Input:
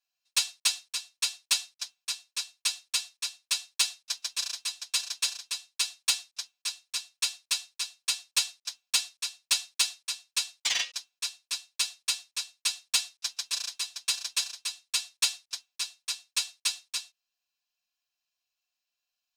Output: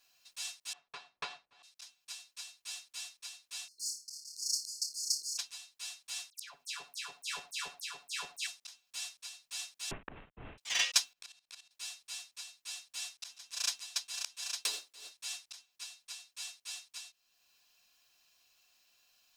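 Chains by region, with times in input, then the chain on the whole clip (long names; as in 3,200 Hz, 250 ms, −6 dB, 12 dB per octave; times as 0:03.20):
0:00.73–0:01.63: low-pass filter 1,000 Hz + parametric band 250 Hz −2.5 dB 2 octaves + downward compressor 3 to 1, threshold −53 dBFS
0:03.68–0:05.38: linear-phase brick-wall band-stop 410–4,200 Hz + flutter between parallel walls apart 4.8 metres, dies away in 0.24 s
0:06.30–0:08.47: all-pass dispersion lows, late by 150 ms, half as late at 1,800 Hz + single-tap delay 75 ms −24 dB
0:09.91–0:10.58: variable-slope delta modulation 16 kbit/s + spectral tilt −2.5 dB per octave + multiband upward and downward compressor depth 70%
0:11.13–0:11.71: bass and treble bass +5 dB, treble −5 dB + output level in coarse steps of 17 dB
0:14.63–0:15.12: gain on one half-wave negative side −7 dB + high-pass with resonance 400 Hz, resonance Q 2.1 + downward compressor 10 to 1, threshold −39 dBFS
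whole clip: dynamic equaliser 4,200 Hz, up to −5 dB, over −41 dBFS, Q 3.1; brickwall limiter −22.5 dBFS; volume swells 608 ms; level +16.5 dB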